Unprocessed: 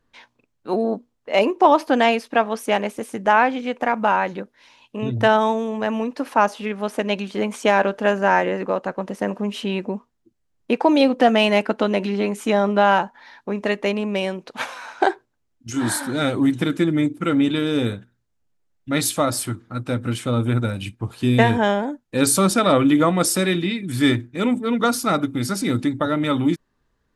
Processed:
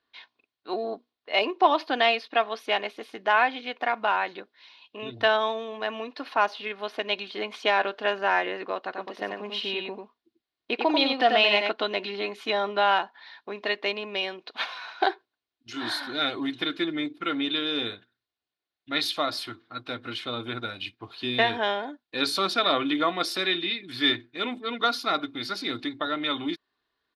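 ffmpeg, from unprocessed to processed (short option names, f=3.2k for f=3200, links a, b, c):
-filter_complex "[0:a]asplit=3[a][b][c];[a]afade=t=out:st=8.91:d=0.02[d];[b]aecho=1:1:91:0.596,afade=t=in:st=8.91:d=0.02,afade=t=out:st=11.72:d=0.02[e];[c]afade=t=in:st=11.72:d=0.02[f];[d][e][f]amix=inputs=3:normalize=0,highpass=f=770:p=1,highshelf=f=5.7k:t=q:w=3:g=-12.5,aecho=1:1:2.8:0.42,volume=-4dB"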